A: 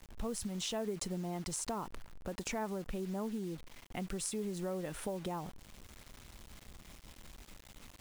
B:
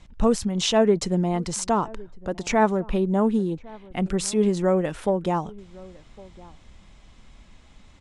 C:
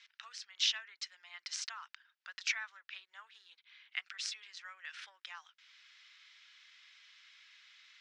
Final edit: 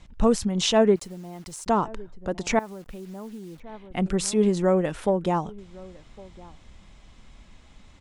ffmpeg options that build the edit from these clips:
ffmpeg -i take0.wav -i take1.wav -filter_complex "[0:a]asplit=2[link_01][link_02];[1:a]asplit=3[link_03][link_04][link_05];[link_03]atrim=end=0.962[link_06];[link_01]atrim=start=0.958:end=1.662[link_07];[link_04]atrim=start=1.658:end=2.592[link_08];[link_02]atrim=start=2.588:end=3.602[link_09];[link_05]atrim=start=3.598[link_10];[link_06][link_07]acrossfade=duration=0.004:curve1=hsin:curve2=hsin[link_11];[link_11][link_08]acrossfade=duration=0.004:curve1=hsin:curve2=hsin[link_12];[link_12][link_09]acrossfade=duration=0.004:curve1=hsin:curve2=hsin[link_13];[link_13][link_10]acrossfade=duration=0.004:curve1=hsin:curve2=hsin" out.wav

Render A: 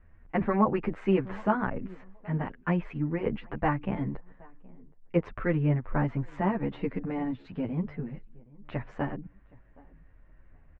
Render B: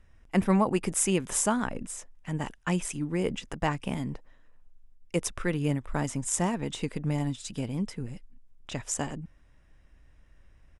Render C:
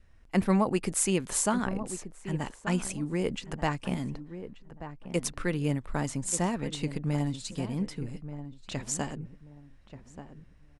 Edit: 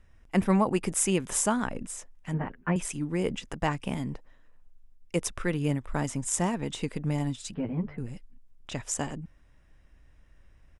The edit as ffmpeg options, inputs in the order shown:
ffmpeg -i take0.wav -i take1.wav -filter_complex "[0:a]asplit=2[link_01][link_02];[1:a]asplit=3[link_03][link_04][link_05];[link_03]atrim=end=2.342[link_06];[link_01]atrim=start=2.338:end=2.762[link_07];[link_04]atrim=start=2.758:end=7.542[link_08];[link_02]atrim=start=7.538:end=7.982[link_09];[link_05]atrim=start=7.978[link_10];[link_06][link_07]acrossfade=duration=0.004:curve1=hsin:curve2=hsin[link_11];[link_11][link_08]acrossfade=duration=0.004:curve1=hsin:curve2=hsin[link_12];[link_12][link_09]acrossfade=duration=0.004:curve1=hsin:curve2=hsin[link_13];[link_13][link_10]acrossfade=duration=0.004:curve1=hsin:curve2=hsin" out.wav

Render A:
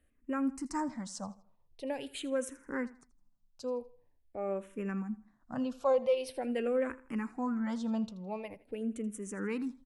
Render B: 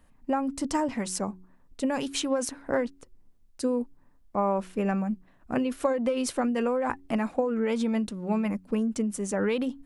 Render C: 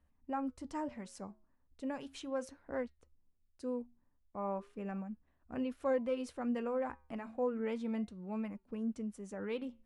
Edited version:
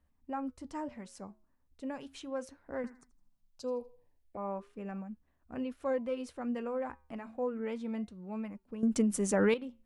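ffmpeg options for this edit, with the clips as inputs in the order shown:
ffmpeg -i take0.wav -i take1.wav -i take2.wav -filter_complex "[2:a]asplit=3[link_01][link_02][link_03];[link_01]atrim=end=2.842[link_04];[0:a]atrim=start=2.838:end=4.372[link_05];[link_02]atrim=start=4.368:end=8.832[link_06];[1:a]atrim=start=8.828:end=9.542[link_07];[link_03]atrim=start=9.538[link_08];[link_04][link_05]acrossfade=duration=0.004:curve1=hsin:curve2=hsin[link_09];[link_09][link_06]acrossfade=duration=0.004:curve1=hsin:curve2=hsin[link_10];[link_10][link_07]acrossfade=duration=0.004:curve1=hsin:curve2=hsin[link_11];[link_11][link_08]acrossfade=duration=0.004:curve1=hsin:curve2=hsin" out.wav

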